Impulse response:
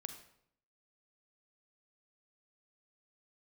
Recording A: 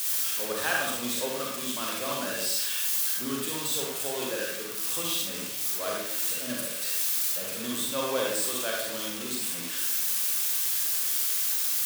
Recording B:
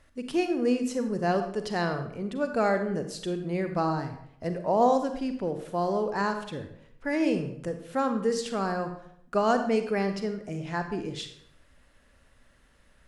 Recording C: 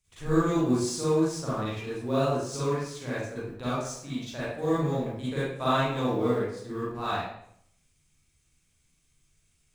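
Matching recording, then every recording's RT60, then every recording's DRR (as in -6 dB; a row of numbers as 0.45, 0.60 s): B; 0.70, 0.70, 0.70 s; -2.5, 7.0, -11.0 dB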